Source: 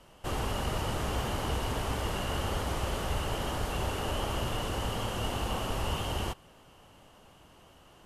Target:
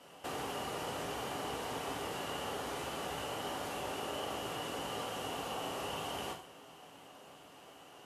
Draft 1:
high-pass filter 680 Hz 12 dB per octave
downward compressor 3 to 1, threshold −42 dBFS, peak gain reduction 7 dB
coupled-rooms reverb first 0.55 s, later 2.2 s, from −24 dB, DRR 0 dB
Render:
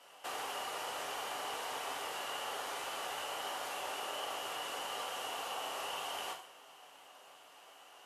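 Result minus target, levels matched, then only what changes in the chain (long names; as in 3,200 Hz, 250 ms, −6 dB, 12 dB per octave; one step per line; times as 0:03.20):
250 Hz band −12.0 dB
change: high-pass filter 210 Hz 12 dB per octave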